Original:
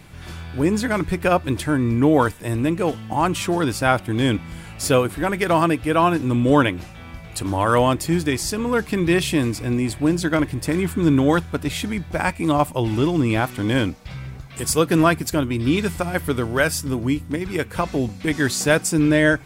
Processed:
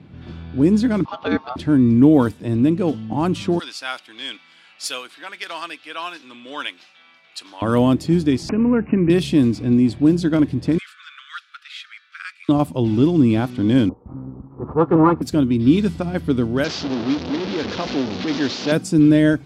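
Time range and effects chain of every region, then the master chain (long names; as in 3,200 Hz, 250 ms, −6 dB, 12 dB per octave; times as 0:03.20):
0:01.05–0:01.56: low-pass filter 5,100 Hz 24 dB per octave + ring modulation 1,000 Hz
0:03.59–0:07.62: high-pass filter 1,400 Hz + high-shelf EQ 2,500 Hz +7 dB
0:08.49–0:09.10: bad sample-rate conversion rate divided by 8×, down none, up filtered + multiband upward and downward compressor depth 40%
0:10.78–0:12.49: Butterworth high-pass 1,200 Hz 96 dB per octave + multiband upward and downward compressor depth 40%
0:13.89–0:15.22: lower of the sound and its delayed copy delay 2.3 ms + low-pass with resonance 1,100 Hz, resonance Q 4.7 + low-pass that shuts in the quiet parts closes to 580 Hz, open at −9 dBFS
0:16.64–0:18.72: linear delta modulator 32 kbit/s, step −15.5 dBFS + bass and treble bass −13 dB, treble −1 dB
whole clip: high-pass filter 62 Hz; low-pass that shuts in the quiet parts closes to 2,700 Hz, open at −12.5 dBFS; graphic EQ with 10 bands 125 Hz +3 dB, 250 Hz +10 dB, 1,000 Hz −3 dB, 2,000 Hz −6 dB, 4,000 Hz +3 dB, 8,000 Hz −5 dB; level −2.5 dB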